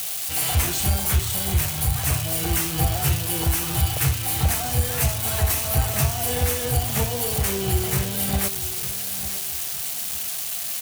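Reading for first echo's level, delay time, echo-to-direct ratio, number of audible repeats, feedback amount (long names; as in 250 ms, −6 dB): −14.0 dB, 898 ms, −13.5 dB, 3, 30%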